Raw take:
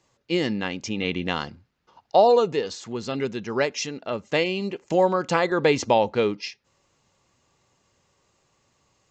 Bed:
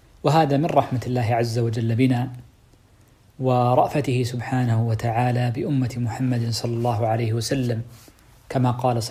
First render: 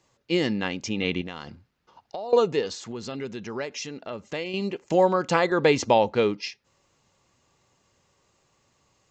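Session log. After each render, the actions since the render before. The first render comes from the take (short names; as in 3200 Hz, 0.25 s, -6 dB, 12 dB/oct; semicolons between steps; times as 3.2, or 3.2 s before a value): 1.21–2.33 compressor, threshold -32 dBFS; 2.91–4.54 compressor 2:1, threshold -34 dBFS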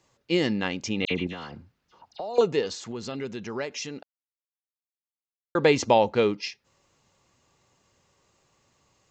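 1.05–2.41 dispersion lows, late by 55 ms, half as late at 2600 Hz; 4.03–5.55 mute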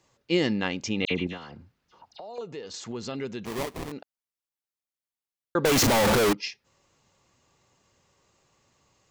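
1.37–2.74 compressor 2.5:1, threshold -41 dBFS; 3.45–3.92 sample-rate reducer 1500 Hz, jitter 20%; 5.65–6.33 infinite clipping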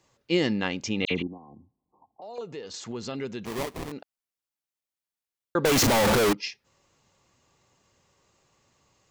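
1.22–2.22 rippled Chebyshev low-pass 1100 Hz, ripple 9 dB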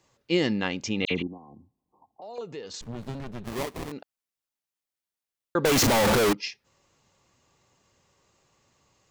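2.81–3.53 running maximum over 65 samples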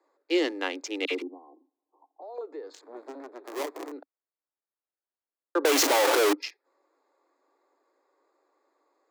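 Wiener smoothing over 15 samples; steep high-pass 280 Hz 96 dB/oct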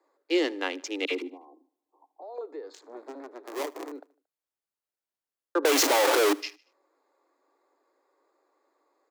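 feedback echo 76 ms, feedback 48%, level -23.5 dB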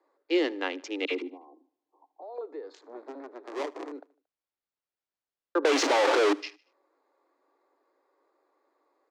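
air absorption 110 m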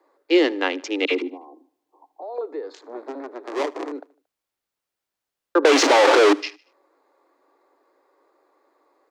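gain +8.5 dB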